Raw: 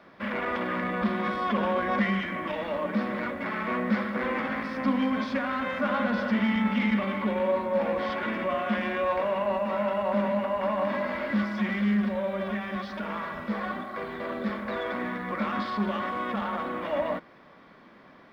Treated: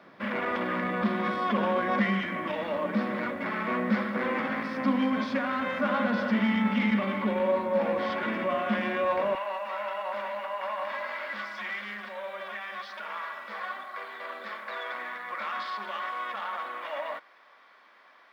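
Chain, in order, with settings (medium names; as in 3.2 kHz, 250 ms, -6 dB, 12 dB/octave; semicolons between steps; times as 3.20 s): high-pass 110 Hz 12 dB/octave, from 9.35 s 890 Hz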